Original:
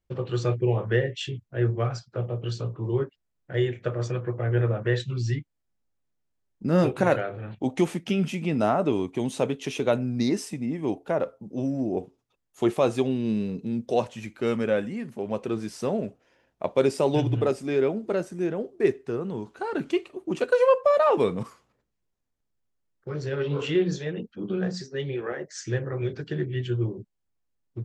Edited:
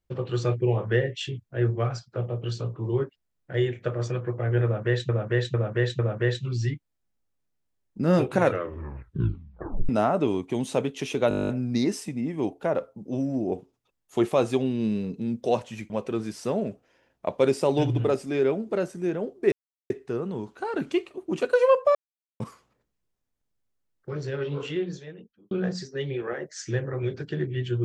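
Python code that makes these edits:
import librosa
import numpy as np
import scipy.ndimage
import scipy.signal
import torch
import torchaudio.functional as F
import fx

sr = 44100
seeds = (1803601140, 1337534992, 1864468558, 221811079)

y = fx.edit(x, sr, fx.repeat(start_s=4.64, length_s=0.45, count=4),
    fx.tape_stop(start_s=7.06, length_s=1.48),
    fx.stutter(start_s=9.94, slice_s=0.02, count=11),
    fx.cut(start_s=14.35, length_s=0.92),
    fx.insert_silence(at_s=18.89, length_s=0.38),
    fx.silence(start_s=20.94, length_s=0.45),
    fx.fade_out_span(start_s=23.09, length_s=1.41), tone=tone)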